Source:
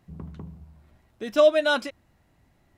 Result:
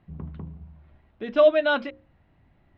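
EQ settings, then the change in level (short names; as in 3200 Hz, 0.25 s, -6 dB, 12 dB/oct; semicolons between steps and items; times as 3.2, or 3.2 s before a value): LPF 3400 Hz 24 dB/oct; low shelf 250 Hz +4 dB; notches 60/120/180/240/300/360/420/480/540 Hz; 0.0 dB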